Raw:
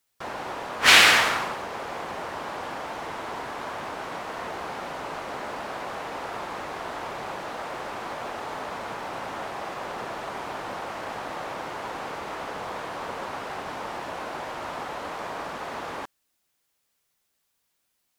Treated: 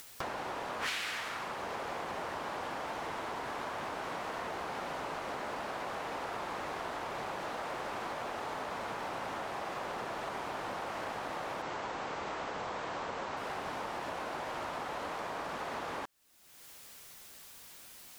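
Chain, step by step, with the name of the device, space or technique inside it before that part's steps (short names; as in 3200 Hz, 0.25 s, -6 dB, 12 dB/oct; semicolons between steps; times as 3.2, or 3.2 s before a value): 11.62–13.37 steep low-pass 8100 Hz 96 dB/oct; upward and downward compression (upward compressor, threshold -43 dBFS; compressor 8:1, threshold -42 dBFS, peak gain reduction 29.5 dB); gain +6 dB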